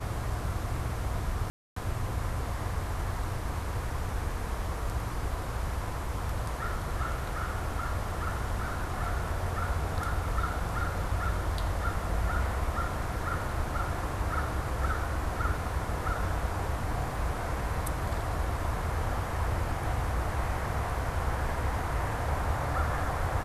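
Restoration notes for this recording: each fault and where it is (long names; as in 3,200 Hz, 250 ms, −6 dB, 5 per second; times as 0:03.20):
0:01.50–0:01.76: drop-out 264 ms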